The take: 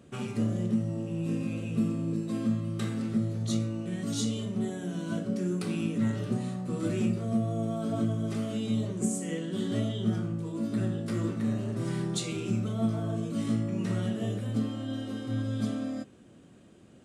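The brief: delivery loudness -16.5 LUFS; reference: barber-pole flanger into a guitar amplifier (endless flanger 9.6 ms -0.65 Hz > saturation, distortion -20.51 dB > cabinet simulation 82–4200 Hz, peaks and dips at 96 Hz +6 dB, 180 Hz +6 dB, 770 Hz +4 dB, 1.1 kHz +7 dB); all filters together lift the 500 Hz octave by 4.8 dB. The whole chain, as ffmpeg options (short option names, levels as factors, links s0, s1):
-filter_complex "[0:a]equalizer=f=500:t=o:g=5.5,asplit=2[s0][s1];[s1]adelay=9.6,afreqshift=-0.65[s2];[s0][s2]amix=inputs=2:normalize=1,asoftclip=threshold=0.075,highpass=82,equalizer=f=96:t=q:w=4:g=6,equalizer=f=180:t=q:w=4:g=6,equalizer=f=770:t=q:w=4:g=4,equalizer=f=1100:t=q:w=4:g=7,lowpass=f=4200:w=0.5412,lowpass=f=4200:w=1.3066,volume=5.96"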